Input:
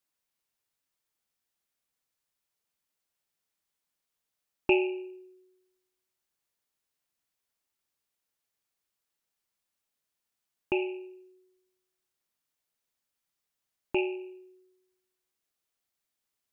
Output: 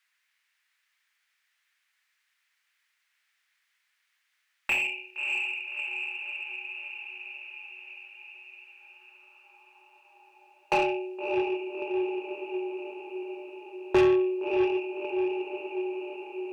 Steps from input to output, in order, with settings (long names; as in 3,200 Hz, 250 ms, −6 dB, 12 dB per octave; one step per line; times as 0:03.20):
feedback delay with all-pass diffusion 633 ms, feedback 63%, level −10 dB
high-pass filter sweep 1,900 Hz → 420 Hz, 0:08.59–0:11.62
mid-hump overdrive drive 25 dB, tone 1,300 Hz, clips at −12.5 dBFS